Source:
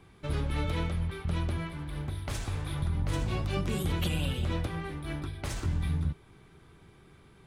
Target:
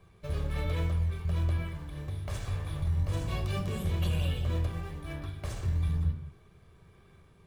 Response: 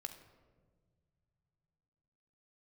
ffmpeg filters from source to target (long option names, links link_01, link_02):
-filter_complex "[0:a]asettb=1/sr,asplit=3[link_01][link_02][link_03];[link_01]atrim=end=3.174[link_04];[link_02]atrim=start=3.17:end=3.67,asetpts=PTS-STARTPTS,afade=type=in:duration=0.004:curve=qsin,afade=type=out:start_time=0.496:duration=0.004:curve=qsin,highshelf=frequency=5400:gain=8.5[link_05];[link_03]atrim=start=3.666[link_06];[link_04][link_05]acrossfade=duration=0.004:curve1=hsin:curve2=qsin[link_07];[link_07][link_06]acrossfade=duration=0.004:curve1=qsin:curve2=hsin,asplit=2[link_08][link_09];[link_09]acrusher=samples=13:mix=1:aa=0.000001:lfo=1:lforange=20.8:lforate=1.1,volume=-6.5dB[link_10];[link_08][link_10]amix=inputs=2:normalize=0[link_11];[1:a]atrim=start_sample=2205,afade=type=out:start_time=0.32:duration=0.01,atrim=end_sample=14553,asetrate=57330,aresample=44100[link_12];[link_11][link_12]afir=irnorm=-1:irlink=0"